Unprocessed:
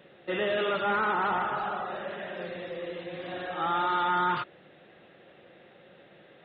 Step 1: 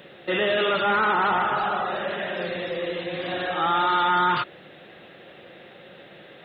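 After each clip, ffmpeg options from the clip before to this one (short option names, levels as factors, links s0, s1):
-filter_complex "[0:a]highshelf=f=3000:g=7.5,asplit=2[s0][s1];[s1]alimiter=level_in=1.33:limit=0.0631:level=0:latency=1,volume=0.75,volume=1[s2];[s0][s2]amix=inputs=2:normalize=0,volume=1.19"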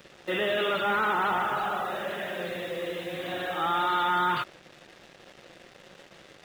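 -af "acrusher=bits=6:mix=0:aa=0.5,volume=0.596"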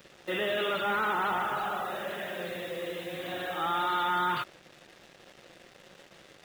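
-af "crystalizer=i=0.5:c=0,volume=0.708"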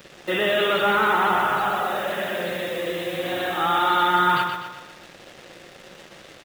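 -af "aecho=1:1:124|248|372|496|620|744:0.501|0.236|0.111|0.052|0.0245|0.0115,volume=2.51"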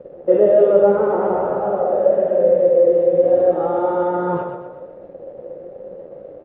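-af "flanger=delay=9.7:depth=4.6:regen=61:speed=1.2:shape=sinusoidal,lowpass=f=530:t=q:w=5.9,volume=2.11"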